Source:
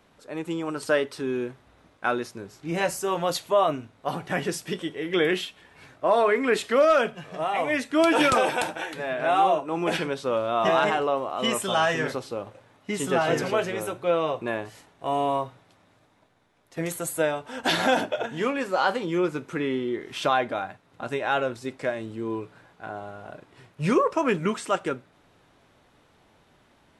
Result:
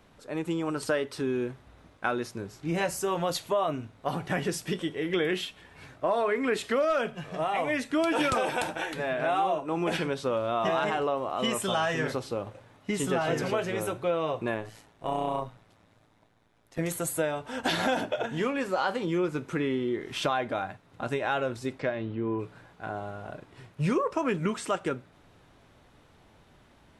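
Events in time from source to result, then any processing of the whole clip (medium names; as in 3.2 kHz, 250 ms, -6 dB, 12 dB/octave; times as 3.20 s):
14.54–16.79 s: AM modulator 110 Hz, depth 50%
21.78–22.38 s: low-pass 5.6 kHz -> 2.4 kHz 24 dB/octave
whole clip: bass shelf 130 Hz +8 dB; compression 2.5:1, threshold -26 dBFS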